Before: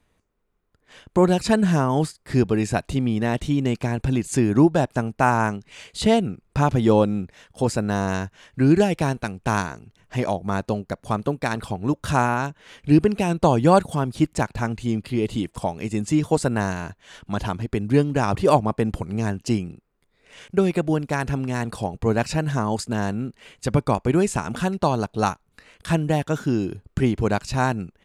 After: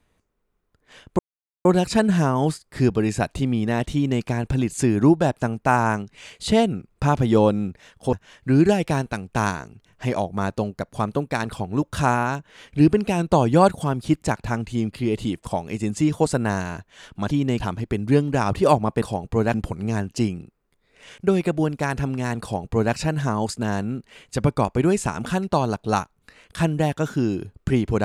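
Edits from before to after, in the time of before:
1.19 s: insert silence 0.46 s
3.48–3.77 s: copy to 17.42 s
7.67–8.24 s: delete
21.72–22.24 s: copy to 18.84 s

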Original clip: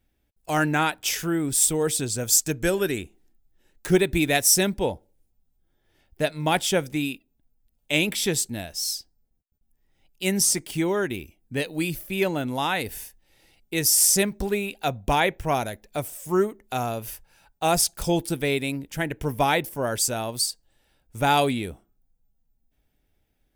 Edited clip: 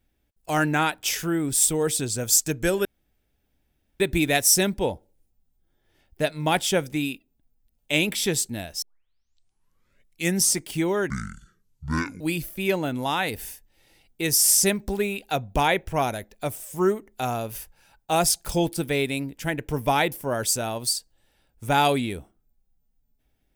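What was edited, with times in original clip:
2.85–4.00 s: room tone
8.82 s: tape start 1.59 s
11.10–11.73 s: speed 57%

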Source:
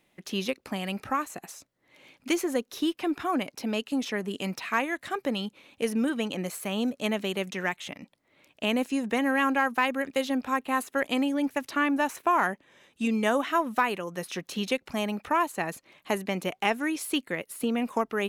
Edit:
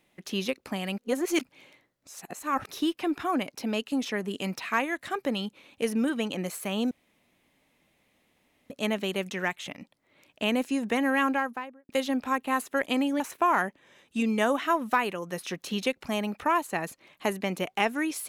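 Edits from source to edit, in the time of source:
0.98–2.71 s: reverse
6.91 s: insert room tone 1.79 s
9.40–10.10 s: studio fade out
11.41–12.05 s: delete

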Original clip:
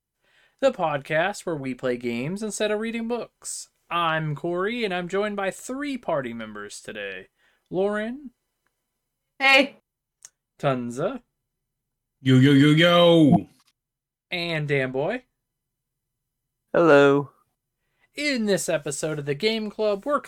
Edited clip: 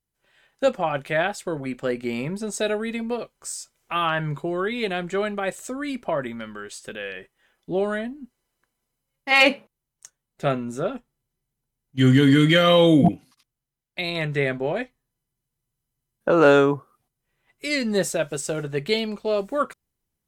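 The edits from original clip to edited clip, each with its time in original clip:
shrink pauses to 90%

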